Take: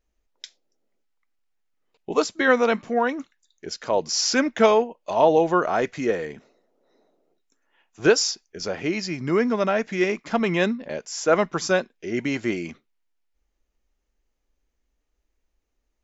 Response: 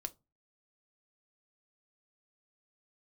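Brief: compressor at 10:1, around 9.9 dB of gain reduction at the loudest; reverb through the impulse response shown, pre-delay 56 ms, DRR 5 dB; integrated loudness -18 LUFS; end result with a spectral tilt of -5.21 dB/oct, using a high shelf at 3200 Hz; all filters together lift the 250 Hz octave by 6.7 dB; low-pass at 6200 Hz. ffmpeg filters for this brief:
-filter_complex "[0:a]lowpass=6.2k,equalizer=f=250:t=o:g=8.5,highshelf=f=3.2k:g=-7.5,acompressor=threshold=-19dB:ratio=10,asplit=2[a][b];[1:a]atrim=start_sample=2205,adelay=56[c];[b][c]afir=irnorm=-1:irlink=0,volume=-2.5dB[d];[a][d]amix=inputs=2:normalize=0,volume=6.5dB"

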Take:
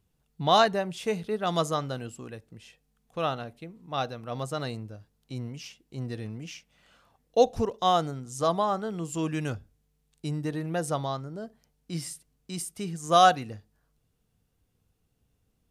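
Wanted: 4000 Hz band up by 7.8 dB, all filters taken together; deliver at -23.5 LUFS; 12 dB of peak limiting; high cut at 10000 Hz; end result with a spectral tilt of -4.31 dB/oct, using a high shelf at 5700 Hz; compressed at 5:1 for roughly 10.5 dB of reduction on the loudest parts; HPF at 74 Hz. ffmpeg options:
-af "highpass=74,lowpass=10k,equalizer=f=4k:t=o:g=7,highshelf=f=5.7k:g=6.5,acompressor=threshold=-25dB:ratio=5,volume=14dB,alimiter=limit=-12.5dB:level=0:latency=1"

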